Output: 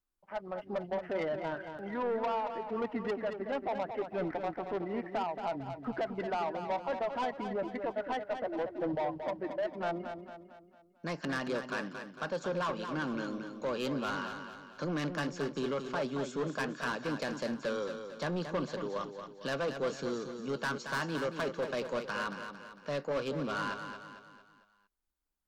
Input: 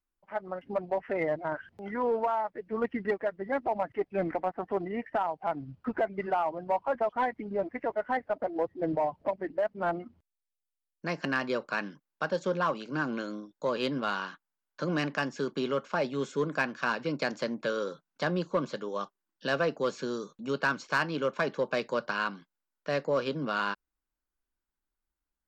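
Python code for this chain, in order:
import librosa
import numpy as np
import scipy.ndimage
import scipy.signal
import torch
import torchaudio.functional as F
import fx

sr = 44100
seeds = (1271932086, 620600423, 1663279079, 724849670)

p1 = 10.0 ** (-27.5 / 20.0) * np.tanh(x / 10.0 ** (-27.5 / 20.0))
p2 = fx.peak_eq(p1, sr, hz=2100.0, db=-2.5, octaves=0.76)
p3 = p2 + fx.echo_feedback(p2, sr, ms=226, feedback_pct=46, wet_db=-8.0, dry=0)
y = F.gain(torch.from_numpy(p3), -1.0).numpy()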